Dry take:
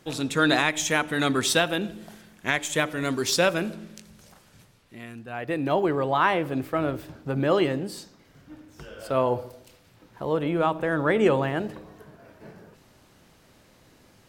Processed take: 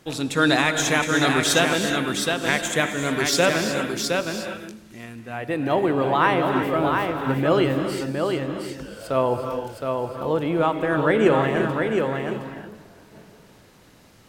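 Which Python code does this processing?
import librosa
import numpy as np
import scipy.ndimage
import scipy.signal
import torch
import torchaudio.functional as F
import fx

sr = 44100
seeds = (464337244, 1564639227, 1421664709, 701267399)

y = x + 10.0 ** (-4.5 / 20.0) * np.pad(x, (int(715 * sr / 1000.0), 0))[:len(x)]
y = fx.rev_gated(y, sr, seeds[0], gate_ms=390, shape='rising', drr_db=6.5)
y = F.gain(torch.from_numpy(y), 2.0).numpy()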